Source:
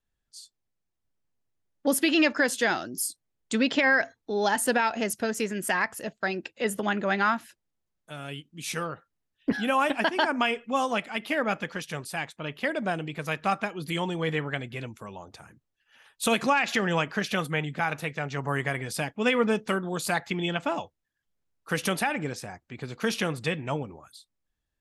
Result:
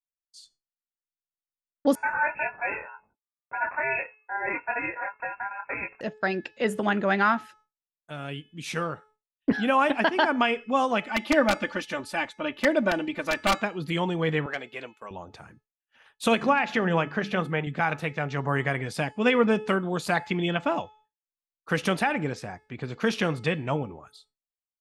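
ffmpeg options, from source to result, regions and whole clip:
ffmpeg -i in.wav -filter_complex "[0:a]asettb=1/sr,asplit=3[link_01][link_02][link_03];[link_01]atrim=end=1.954[link_04];[link_02]atrim=start=1.95:end=6.01,asetpts=PTS-STARTPTS,afade=type=in:duration=0.004:curve=qsin,afade=type=out:start_time=4.056:duration=0.004:curve=qsin,flanger=delay=19.5:depth=6.7:speed=1.8,aeval=exprs='val(0)*sin(2*PI*1500*n/s)':channel_layout=same,lowpass=frequency=2300:width_type=q:width=0.5098,lowpass=frequency=2300:width_type=q:width=0.6013,lowpass=frequency=2300:width_type=q:width=0.9,lowpass=frequency=2300:width_type=q:width=2.563,afreqshift=-2700[link_05];[link_03]atrim=start=6.006[link_06];[link_04][link_05]acrossfade=duration=0.004:curve1=hsin:curve2=qsin[link_07];[link_07][link_06]acrossfade=duration=0.004:curve1=qsin:curve2=hsin,asettb=1/sr,asplit=3[link_08][link_09][link_10];[link_08]atrim=end=11.064[link_11];[link_09]atrim=start=11.06:end=13.58,asetpts=PTS-STARTPTS,afade=type=in:duration=0.004:curve=qsin,afade=type=out:start_time=2.516:duration=0.004:curve=qsin,aeval=exprs='(mod(5.96*val(0)+1,2)-1)/5.96':channel_layout=same,aecho=1:1:3.4:0.91,atrim=end_sample=111132[link_12];[link_10]atrim=start=13.576[link_13];[link_11][link_12]acrossfade=duration=0.004:curve1=hsin:curve2=qsin[link_14];[link_14][link_13]acrossfade=duration=0.004:curve1=qsin:curve2=hsin,asettb=1/sr,asplit=3[link_15][link_16][link_17];[link_15]atrim=end=14.464[link_18];[link_16]atrim=start=14.46:end=15.11,asetpts=PTS-STARTPTS,afade=type=in:duration=0.004:curve=qsin,afade=type=out:start_time=0.646:duration=0.004:curve=qsin,highpass=430,agate=range=-33dB:threshold=-48dB:ratio=3:release=100:detection=peak,asoftclip=type=hard:threshold=-23dB[link_19];[link_17]atrim=start=15.106[link_20];[link_18][link_19]acrossfade=duration=0.004:curve1=hsin:curve2=qsin[link_21];[link_21][link_20]acrossfade=duration=0.004:curve1=qsin:curve2=hsin,asettb=1/sr,asplit=3[link_22][link_23][link_24];[link_22]atrim=end=16.354[link_25];[link_23]atrim=start=16.35:end=17.67,asetpts=PTS-STARTPTS,afade=type=in:duration=0.004:curve=qsin,afade=type=out:start_time=1.316:duration=0.004:curve=qsin,highshelf=frequency=3000:gain=-8.5,bandreject=frequency=50:width_type=h:width=6,bandreject=frequency=100:width_type=h:width=6,bandreject=frequency=150:width_type=h:width=6,bandreject=frequency=200:width_type=h:width=6,bandreject=frequency=250:width_type=h:width=6,bandreject=frequency=300:width_type=h:width=6,bandreject=frequency=350:width_type=h:width=6[link_26];[link_24]atrim=start=17.666[link_27];[link_25][link_26]acrossfade=duration=0.004:curve1=hsin:curve2=qsin[link_28];[link_28][link_27]acrossfade=duration=0.004:curve1=qsin:curve2=hsin,bandreject=frequency=429.2:width_type=h:width=4,bandreject=frequency=858.4:width_type=h:width=4,bandreject=frequency=1287.6:width_type=h:width=4,bandreject=frequency=1716.8:width_type=h:width=4,bandreject=frequency=2146:width_type=h:width=4,bandreject=frequency=2575.2:width_type=h:width=4,bandreject=frequency=3004.4:width_type=h:width=4,bandreject=frequency=3433.6:width_type=h:width=4,bandreject=frequency=3862.8:width_type=h:width=4,bandreject=frequency=4292:width_type=h:width=4,bandreject=frequency=4721.2:width_type=h:width=4,bandreject=frequency=5150.4:width_type=h:width=4,bandreject=frequency=5579.6:width_type=h:width=4,bandreject=frequency=6008.8:width_type=h:width=4,bandreject=frequency=6438:width_type=h:width=4,bandreject=frequency=6867.2:width_type=h:width=4,bandreject=frequency=7296.4:width_type=h:width=4,bandreject=frequency=7725.6:width_type=h:width=4,bandreject=frequency=8154.8:width_type=h:width=4,bandreject=frequency=8584:width_type=h:width=4,bandreject=frequency=9013.2:width_type=h:width=4,bandreject=frequency=9442.4:width_type=h:width=4,agate=range=-33dB:threshold=-54dB:ratio=3:detection=peak,aemphasis=mode=reproduction:type=50fm,volume=2.5dB" out.wav

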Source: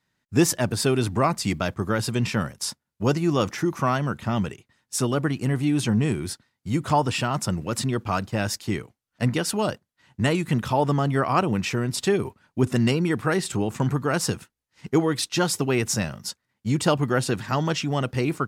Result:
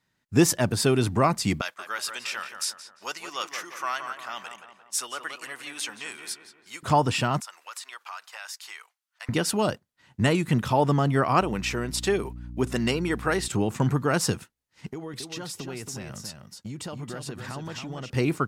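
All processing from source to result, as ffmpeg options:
ffmpeg -i in.wav -filter_complex "[0:a]asettb=1/sr,asplit=3[link_01][link_02][link_03];[link_01]atrim=end=1.614[link_04];[link_02]atrim=start=1.61:end=6.83,asetpts=PTS-STARTPTS,afade=type=in:duration=0.004:curve=qsin,afade=type=out:start_time=5.216:duration=0.004:curve=qsin,highpass=1300,asplit=2[link_05][link_06];[link_06]adelay=174,lowpass=frequency=2000:poles=1,volume=-6.5dB,asplit=2[link_07][link_08];[link_08]adelay=174,lowpass=frequency=2000:poles=1,volume=0.52,asplit=2[link_09][link_10];[link_10]adelay=174,lowpass=frequency=2000:poles=1,volume=0.52,asplit=2[link_11][link_12];[link_12]adelay=174,lowpass=frequency=2000:poles=1,volume=0.52,asplit=2[link_13][link_14];[link_14]adelay=174,lowpass=frequency=2000:poles=1,volume=0.52,asplit=2[link_15][link_16];[link_16]adelay=174,lowpass=frequency=2000:poles=1,volume=0.52[link_17];[link_05][link_07][link_09][link_11][link_13][link_15][link_17]amix=inputs=7:normalize=0,atrim=end_sample=230202[link_18];[link_03]atrim=start=6.826[link_19];[link_04][link_18]acrossfade=duration=0.004:curve1=hsin:curve2=qsin[link_20];[link_20][link_19]acrossfade=duration=0.004:curve1=qsin:curve2=hsin,asettb=1/sr,asplit=3[link_21][link_22][link_23];[link_21]atrim=end=7.404[link_24];[link_22]atrim=start=7.4:end=9.29,asetpts=PTS-STARTPTS,afade=type=in:duration=0.004:curve=qsin,afade=type=out:start_time=1.886:duration=0.004:curve=qsin,highpass=frequency=950:width=0.5412,highpass=frequency=950:width=1.3066,acompressor=threshold=-37dB:ratio=3:attack=3.2:release=140:knee=1:detection=peak[link_25];[link_23]atrim=start=9.286[link_26];[link_24][link_25]acrossfade=duration=0.004:curve1=hsin:curve2=qsin[link_27];[link_27][link_26]acrossfade=duration=0.004:curve1=qsin:curve2=hsin,asettb=1/sr,asplit=3[link_28][link_29][link_30];[link_28]atrim=end=11.414[link_31];[link_29]atrim=start=11.41:end=13.48,asetpts=PTS-STARTPTS,afade=type=in:duration=0.004:curve=qsin,afade=type=out:start_time=2.066:duration=0.004:curve=qsin,highpass=frequency=350:poles=1,aeval=exprs='val(0)+0.0141*(sin(2*PI*60*n/s)+sin(2*PI*2*60*n/s)/2+sin(2*PI*3*60*n/s)/3+sin(2*PI*4*60*n/s)/4+sin(2*PI*5*60*n/s)/5)':channel_layout=same[link_32];[link_30]atrim=start=13.476[link_33];[link_31][link_32]acrossfade=duration=0.004:curve1=hsin:curve2=qsin[link_34];[link_34][link_33]acrossfade=duration=0.004:curve1=qsin:curve2=hsin,asettb=1/sr,asplit=3[link_35][link_36][link_37];[link_35]atrim=end=14.864[link_38];[link_36]atrim=start=14.86:end=18.1,asetpts=PTS-STARTPTS,afade=type=in:duration=0.004:curve=qsin,afade=type=out:start_time=3.236:duration=0.004:curve=qsin,acompressor=threshold=-33dB:ratio=8:attack=3.2:release=140:knee=1:detection=peak,aecho=1:1:275:0.473,atrim=end_sample=142884[link_39];[link_37]atrim=start=18.096[link_40];[link_38][link_39]acrossfade=duration=0.004:curve1=hsin:curve2=qsin[link_41];[link_41][link_40]acrossfade=duration=0.004:curve1=qsin:curve2=hsin" out.wav

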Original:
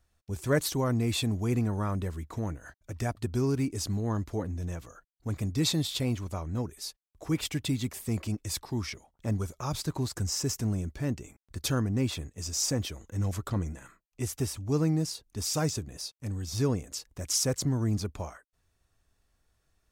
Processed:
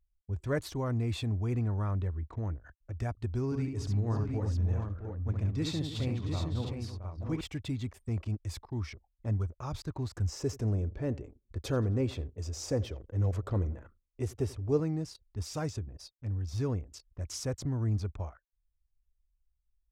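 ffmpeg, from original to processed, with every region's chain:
ffmpeg -i in.wav -filter_complex "[0:a]asettb=1/sr,asplit=3[link_01][link_02][link_03];[link_01]atrim=end=3.454[link_04];[link_02]atrim=start=3.45:end=7.41,asetpts=PTS-STARTPTS,afade=type=in:duration=0.004:curve=qsin,afade=type=out:start_time=3.956:duration=0.004:curve=qsin,highshelf=frequency=12000:gain=-8.5,aecho=1:1:69|314|668|713:0.562|0.224|0.299|0.501,atrim=end_sample=174636[link_05];[link_03]atrim=start=7.406[link_06];[link_04][link_05]acrossfade=duration=0.004:curve1=hsin:curve2=qsin[link_07];[link_07][link_06]acrossfade=duration=0.004:curve1=qsin:curve2=hsin,asettb=1/sr,asplit=3[link_08][link_09][link_10];[link_08]atrim=end=10.324[link_11];[link_09]atrim=start=10.32:end=14.8,asetpts=PTS-STARTPTS,afade=type=in:duration=0.004:curve=qsin,afade=type=out:start_time=4.476:duration=0.004:curve=qsin,equalizer=frequency=470:width=1.3:gain=9.5,aecho=1:1:87|174|261|348:0.1|0.047|0.0221|0.0104,atrim=end_sample=197568[link_12];[link_10]atrim=start=14.796[link_13];[link_11][link_12]acrossfade=duration=0.004:curve1=hsin:curve2=qsin[link_14];[link_14][link_13]acrossfade=duration=0.004:curve1=qsin:curve2=hsin,lowpass=frequency=2700:poles=1,anlmdn=0.0158,lowshelf=frequency=120:width_type=q:width=1.5:gain=6,volume=-5dB" out.wav

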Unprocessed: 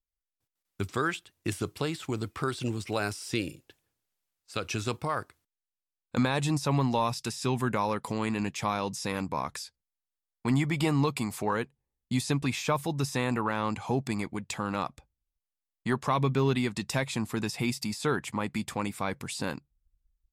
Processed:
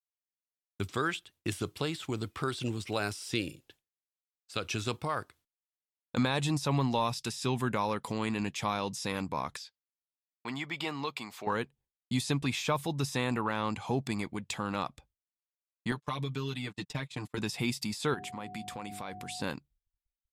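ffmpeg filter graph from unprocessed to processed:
ffmpeg -i in.wav -filter_complex "[0:a]asettb=1/sr,asplit=3[link_01][link_02][link_03];[link_01]atrim=end=9.574[link_04];[link_02]atrim=start=9.57:end=11.47,asetpts=PTS-STARTPTS,afade=type=in:duration=0.004:curve=qsin,afade=type=out:start_time=1.896:duration=0.004:curve=qsin,highpass=frequency=810:poles=1,equalizer=frequency=10000:width_type=o:width=0.96:gain=-13.5[link_05];[link_03]atrim=start=11.466[link_06];[link_04][link_05]acrossfade=duration=0.004:curve1=hsin:curve2=qsin[link_07];[link_07][link_06]acrossfade=duration=0.004:curve1=qsin:curve2=hsin,asettb=1/sr,asplit=3[link_08][link_09][link_10];[link_08]atrim=end=15.914[link_11];[link_09]atrim=start=15.91:end=17.38,asetpts=PTS-STARTPTS,afade=type=in:duration=0.004:curve=qsin,afade=type=out:start_time=1.466:duration=0.004:curve=qsin,agate=range=-36dB:threshold=-35dB:ratio=16:release=100:detection=peak,aecho=1:1:6.7:0.91,atrim=end_sample=64827,acrossover=split=2600|6300[link_12][link_13][link_14];[link_12]acompressor=threshold=-32dB:ratio=4[link_15];[link_13]acompressor=threshold=-46dB:ratio=4[link_16];[link_14]acompressor=threshold=-58dB:ratio=4[link_17];[link_15][link_16][link_17]amix=inputs=3:normalize=0[link_18];[link_10]atrim=start=17.376[link_19];[link_11][link_18]acrossfade=duration=0.004:curve1=hsin:curve2=qsin[link_20];[link_20][link_19]acrossfade=duration=0.004:curve1=qsin:curve2=hsin,asettb=1/sr,asplit=3[link_21][link_22][link_23];[link_21]atrim=end=18.144[link_24];[link_22]atrim=start=18.14:end=19.42,asetpts=PTS-STARTPTS,afade=type=in:duration=0.004:curve=qsin,afade=type=out:start_time=1.276:duration=0.004:curve=qsin,bandreject=frequency=50:width_type=h:width=6,bandreject=frequency=100:width_type=h:width=6,bandreject=frequency=150:width_type=h:width=6,bandreject=frequency=200:width_type=h:width=6,bandreject=frequency=250:width_type=h:width=6,bandreject=frequency=300:width_type=h:width=6,bandreject=frequency=350:width_type=h:width=6,bandreject=frequency=400:width_type=h:width=6,acompressor=threshold=-37dB:ratio=2.5:attack=3.2:release=140:knee=1:detection=peak,aeval=exprs='val(0)+0.00794*sin(2*PI*730*n/s)':channel_layout=same[link_25];[link_23]atrim=start=19.416[link_26];[link_24][link_25]acrossfade=duration=0.004:curve1=hsin:curve2=qsin[link_27];[link_27][link_26]acrossfade=duration=0.004:curve1=qsin:curve2=hsin,agate=range=-33dB:threshold=-56dB:ratio=3:detection=peak,equalizer=frequency=3400:width=2.1:gain=4.5,volume=-2.5dB" out.wav

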